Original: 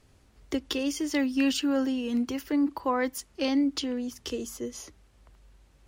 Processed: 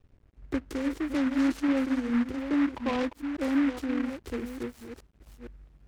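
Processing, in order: reverse delay 0.421 s, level -8 dB; tilt -3 dB/oct; crossover distortion -51 dBFS; high shelf 5700 Hz -10.5 dB, from 4.27 s +3.5 dB; noise-modulated delay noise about 1400 Hz, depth 0.1 ms; gain -5.5 dB

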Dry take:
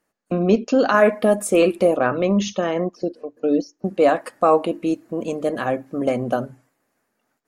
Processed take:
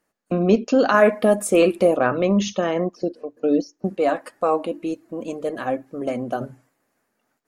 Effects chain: 3.95–6.41 flange 2 Hz, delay 1.9 ms, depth 2.1 ms, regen +51%

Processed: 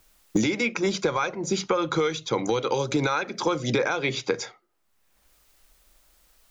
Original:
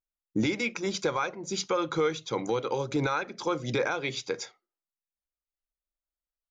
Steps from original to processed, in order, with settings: three-band squash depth 100%; gain +3.5 dB

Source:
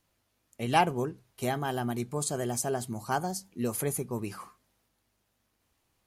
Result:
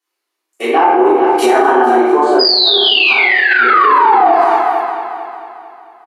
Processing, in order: treble ducked by the level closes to 1100 Hz, closed at -29.5 dBFS; bell 610 Hz -10 dB 0.56 oct; resonator 750 Hz, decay 0.42 s, mix 70%; 2.39–4.31 painted sound fall 670–5000 Hz -36 dBFS; elliptic high-pass 350 Hz, stop band 70 dB; shoebox room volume 220 m³, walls mixed, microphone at 3.4 m; gate -59 dBFS, range -23 dB; multi-head echo 0.224 s, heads first and second, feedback 43%, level -17.5 dB; 1.06–3.62 negative-ratio compressor -33 dBFS, ratio -1; doubler 35 ms -4 dB; maximiser +26 dB; gain -1 dB

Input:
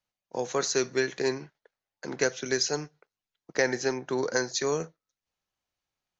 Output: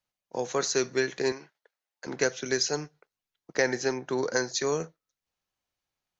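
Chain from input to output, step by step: 1.32–2.07 HPF 610 Hz 6 dB/oct

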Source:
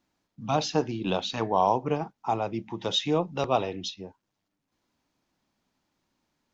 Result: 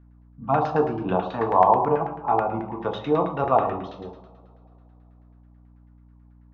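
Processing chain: two-slope reverb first 0.93 s, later 3.3 s, from -24 dB, DRR 1.5 dB; hum 60 Hz, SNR 24 dB; LFO low-pass saw down 9.2 Hz 800–1800 Hz

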